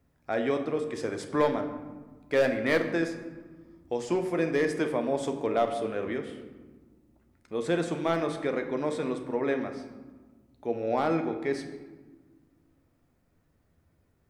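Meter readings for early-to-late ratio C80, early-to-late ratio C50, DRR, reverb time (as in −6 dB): 10.5 dB, 9.0 dB, 5.0 dB, 1.4 s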